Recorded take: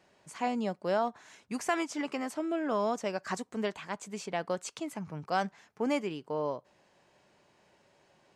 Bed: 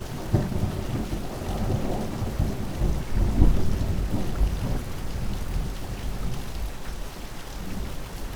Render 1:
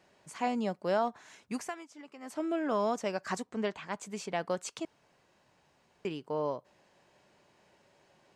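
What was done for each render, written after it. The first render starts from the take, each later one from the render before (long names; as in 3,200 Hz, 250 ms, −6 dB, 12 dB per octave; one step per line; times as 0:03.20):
0:01.54–0:02.41: duck −15.5 dB, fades 0.21 s
0:03.43–0:03.92: high-frequency loss of the air 65 metres
0:04.85–0:06.05: fill with room tone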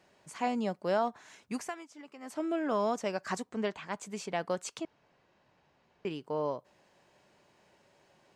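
0:04.81–0:06.07: high-frequency loss of the air 120 metres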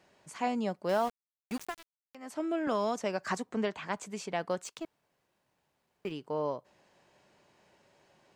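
0:00.89–0:02.15: centre clipping without the shift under −39 dBFS
0:02.67–0:04.06: multiband upward and downward compressor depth 70%
0:04.64–0:06.12: mu-law and A-law mismatch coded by A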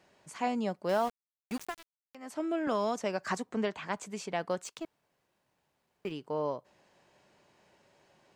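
no processing that can be heard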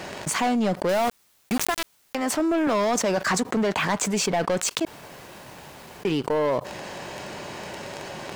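leveller curve on the samples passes 3
envelope flattener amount 70%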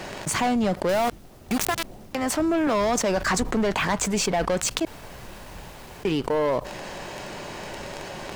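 mix in bed −16 dB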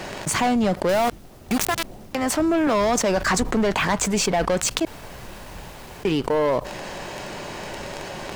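level +2.5 dB
brickwall limiter −2 dBFS, peak gain reduction 3 dB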